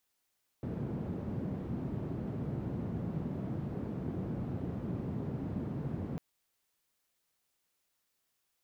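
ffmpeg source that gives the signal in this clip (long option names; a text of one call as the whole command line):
ffmpeg -f lavfi -i "anoisesrc=color=white:duration=5.55:sample_rate=44100:seed=1,highpass=frequency=120,lowpass=frequency=170,volume=-7.5dB" out.wav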